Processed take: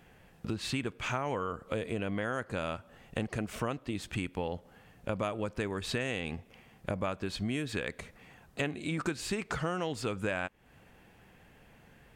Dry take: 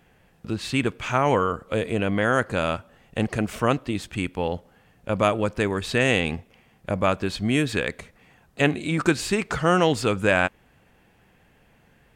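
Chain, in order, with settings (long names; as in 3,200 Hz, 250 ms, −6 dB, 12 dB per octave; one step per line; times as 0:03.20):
downward compressor 4 to 1, threshold −32 dBFS, peak gain reduction 15.5 dB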